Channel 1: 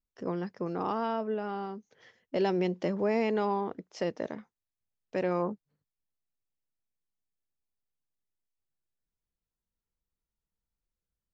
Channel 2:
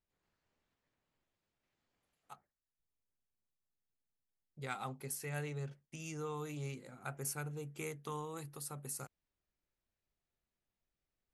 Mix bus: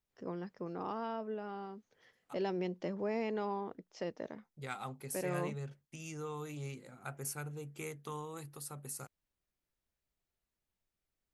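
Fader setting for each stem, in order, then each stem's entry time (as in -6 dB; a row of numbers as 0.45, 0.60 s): -8.0, -0.5 dB; 0.00, 0.00 s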